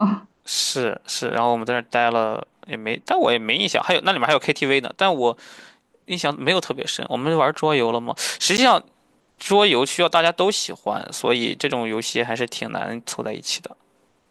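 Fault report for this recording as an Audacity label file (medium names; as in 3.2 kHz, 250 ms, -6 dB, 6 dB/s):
8.570000	8.580000	dropout 9.7 ms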